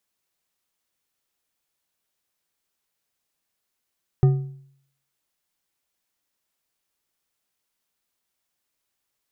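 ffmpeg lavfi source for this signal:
-f lavfi -i "aevalsrc='0.316*pow(10,-3*t/0.64)*sin(2*PI*137*t)+0.0944*pow(10,-3*t/0.472)*sin(2*PI*377.7*t)+0.0282*pow(10,-3*t/0.386)*sin(2*PI*740.3*t)+0.00841*pow(10,-3*t/0.332)*sin(2*PI*1223.8*t)+0.00251*pow(10,-3*t/0.294)*sin(2*PI*1827.6*t)':d=1.55:s=44100"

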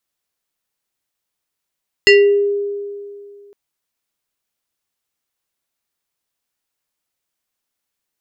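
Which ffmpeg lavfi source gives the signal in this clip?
-f lavfi -i "aevalsrc='0.631*pow(10,-3*t/2.31)*sin(2*PI*405*t+1.7*pow(10,-3*t/0.46)*sin(2*PI*5.85*405*t))':d=1.46:s=44100"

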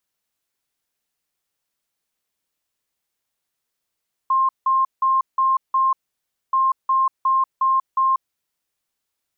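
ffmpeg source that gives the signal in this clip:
-f lavfi -i "aevalsrc='0.188*sin(2*PI*1060*t)*clip(min(mod(mod(t,2.23),0.36),0.19-mod(mod(t,2.23),0.36))/0.005,0,1)*lt(mod(t,2.23),1.8)':d=4.46:s=44100"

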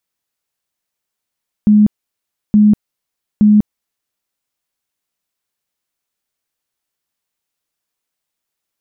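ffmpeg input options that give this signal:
-f lavfi -i "aevalsrc='0.562*sin(2*PI*210*mod(t,0.87))*lt(mod(t,0.87),41/210)':d=2.61:s=44100"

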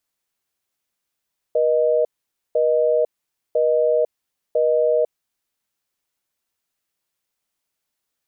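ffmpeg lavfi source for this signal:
-f lavfi -i "aevalsrc='0.133*(sin(2*PI*480*t)+sin(2*PI*620*t))*clip(min(mod(t,1),0.5-mod(t,1))/0.005,0,1)':d=3.58:s=44100"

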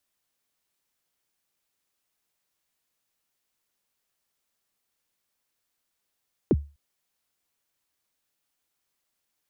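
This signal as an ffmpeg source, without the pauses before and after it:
-f lavfi -i "aevalsrc='0.224*pow(10,-3*t/0.3)*sin(2*PI*(460*0.04/log(72/460)*(exp(log(72/460)*min(t,0.04)/0.04)-1)+72*max(t-0.04,0)))':d=0.25:s=44100"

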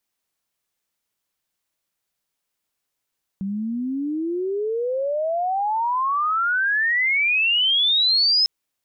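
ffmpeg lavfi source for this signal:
-f lavfi -i "aevalsrc='pow(10,(-23.5+9*t/5.05)/20)*sin(2*PI*190*5.05/log(5200/190)*(exp(log(5200/190)*t/5.05)-1))':d=5.05:s=44100"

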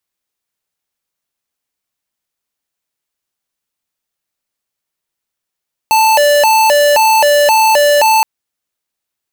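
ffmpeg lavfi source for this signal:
-f lavfi -i "aevalsrc='0.355*(2*lt(mod((732.5*t+148.5/1.9*(0.5-abs(mod(1.9*t,1)-0.5))),1),0.5)-1)':d=2.32:s=44100"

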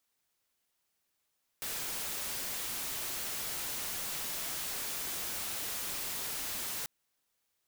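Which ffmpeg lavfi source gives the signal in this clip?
-f lavfi -i "anoisesrc=c=white:a=0.0231:d=5.24:r=44100:seed=1"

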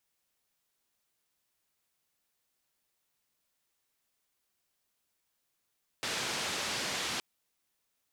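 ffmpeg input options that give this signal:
-f lavfi -i "anoisesrc=c=white:d=1.17:r=44100:seed=1,highpass=f=100,lowpass=f=5300,volume=-24.2dB"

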